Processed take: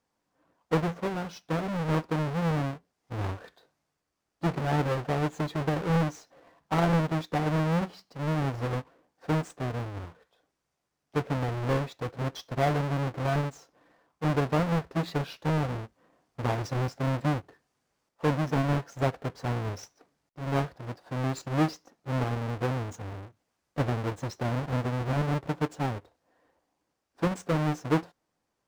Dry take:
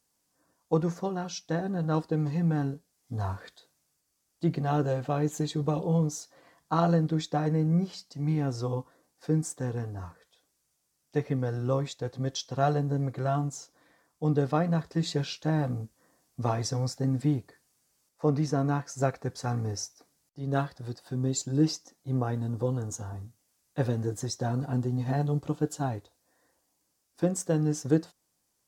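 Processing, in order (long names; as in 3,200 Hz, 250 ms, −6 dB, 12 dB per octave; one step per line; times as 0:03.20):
each half-wave held at its own peak
mid-hump overdrive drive 4 dB, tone 1,000 Hz, clips at −10.5 dBFS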